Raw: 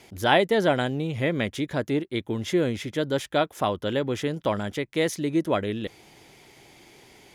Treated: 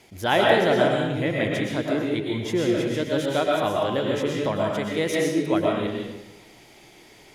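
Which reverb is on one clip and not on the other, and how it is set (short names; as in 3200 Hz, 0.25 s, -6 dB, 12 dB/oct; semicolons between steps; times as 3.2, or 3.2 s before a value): digital reverb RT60 0.97 s, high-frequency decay 0.85×, pre-delay 80 ms, DRR -2.5 dB; gain -2 dB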